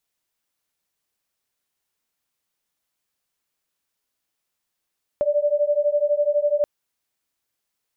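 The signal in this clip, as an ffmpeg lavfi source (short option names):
-f lavfi -i "aevalsrc='0.0944*(sin(2*PI*581*t)+sin(2*PI*593*t))':d=1.43:s=44100"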